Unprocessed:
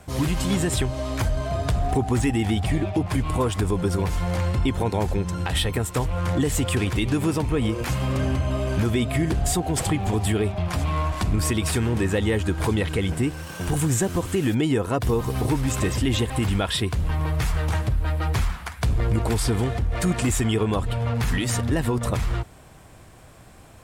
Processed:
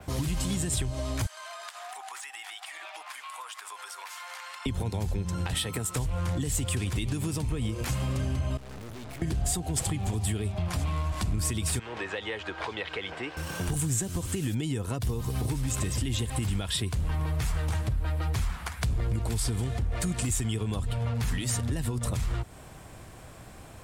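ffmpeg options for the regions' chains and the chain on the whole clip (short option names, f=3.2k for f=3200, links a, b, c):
-filter_complex "[0:a]asettb=1/sr,asplit=3[a][b][c];[a]atrim=end=1.264[d];[b]atrim=start=1.26:end=4.66,asetpts=PTS-STARTPTS,afade=t=in:d=0.004:c=qsin,afade=t=out:st=3.396:d=0.004:c=qsin,highpass=f=1k:w=0.5412,highpass=f=1k:w=1.3066,acompressor=threshold=-38dB:ratio=12:attack=3.2:release=140:knee=1:detection=peak[e];[c]atrim=start=4.656[f];[d][e]acrossfade=d=0.004:c1=hsin:c2=qsin[g];[g][f]acrossfade=d=0.004:c1=qsin:c2=hsin,asettb=1/sr,asplit=3[h][i][j];[h]atrim=end=5.544[k];[i]atrim=start=5.54:end=5.95,asetpts=PTS-STARTPTS,afade=t=in:d=0.004:c=qsin,afade=t=out:st=0.406:d=0.004:c=qsin,highpass=140,aeval=exprs='val(0)+0.0112*sin(2*PI*1300*n/s)':c=same[l];[j]atrim=start=5.946[m];[k][l]acrossfade=d=0.004:c1=hsin:c2=qsin[n];[n][m]acrossfade=d=0.004:c1=qsin:c2=hsin,asettb=1/sr,asplit=3[o][p][q];[o]atrim=end=8.574[r];[p]atrim=start=8.57:end=9.22,asetpts=PTS-STARTPTS,afade=t=in:d=0.004:c=qsin,afade=t=out:st=0.646:d=0.004:c=qsin,bandreject=f=580:w=12,aeval=exprs='(tanh(126*val(0)+0.65)-tanh(0.65))/126':c=same[s];[q]atrim=start=9.216[t];[r][s]acrossfade=d=0.004:c1=hsin:c2=qsin[u];[u][t]acrossfade=d=0.004:c1=qsin:c2=hsin,asettb=1/sr,asplit=3[v][w][x];[v]atrim=end=11.794[y];[w]atrim=start=11.79:end=13.37,asetpts=PTS-STARTPTS,afade=t=in:d=0.004:c=qsin,afade=t=out:st=1.576:d=0.004:c=qsin,acrossover=split=8700[z][aa];[aa]acompressor=threshold=-52dB:ratio=4:attack=1:release=60[ab];[z][ab]amix=inputs=2:normalize=0,acrossover=split=470 4600:gain=0.0631 1 0.0631[ac][ad][ae];[ac][ad][ae]amix=inputs=3:normalize=0[af];[x]atrim=start=13.366[ag];[y][af]acrossfade=d=0.004:c1=hsin:c2=qsin[ah];[ah][ag]acrossfade=d=0.004:c1=qsin:c2=hsin,acrossover=split=190|3000[ai][aj][ak];[aj]acompressor=threshold=-32dB:ratio=6[al];[ai][al][ak]amix=inputs=3:normalize=0,adynamicequalizer=threshold=0.00794:dfrequency=8500:dqfactor=1.4:tfrequency=8500:tqfactor=1.4:attack=5:release=100:ratio=0.375:range=2:mode=boostabove:tftype=bell,acompressor=threshold=-31dB:ratio=2,volume=1dB"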